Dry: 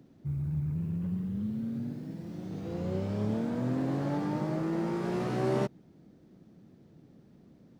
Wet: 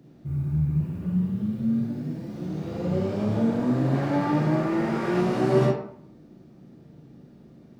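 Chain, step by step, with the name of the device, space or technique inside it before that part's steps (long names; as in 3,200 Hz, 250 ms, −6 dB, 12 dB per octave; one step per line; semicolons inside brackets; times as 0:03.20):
bathroom (convolution reverb RT60 0.65 s, pre-delay 29 ms, DRR −3 dB)
0:03.94–0:05.21: parametric band 2,000 Hz +5.5 dB 1.2 octaves
level +2 dB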